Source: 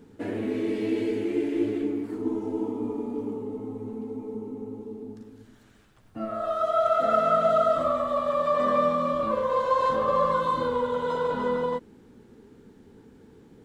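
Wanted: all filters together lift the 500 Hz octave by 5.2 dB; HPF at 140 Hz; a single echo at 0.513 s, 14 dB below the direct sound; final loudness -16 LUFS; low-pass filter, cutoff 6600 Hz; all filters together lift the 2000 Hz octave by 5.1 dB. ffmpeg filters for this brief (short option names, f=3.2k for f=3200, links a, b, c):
-af "highpass=140,lowpass=6.6k,equalizer=f=500:t=o:g=6,equalizer=f=2k:t=o:g=6.5,aecho=1:1:513:0.2,volume=6dB"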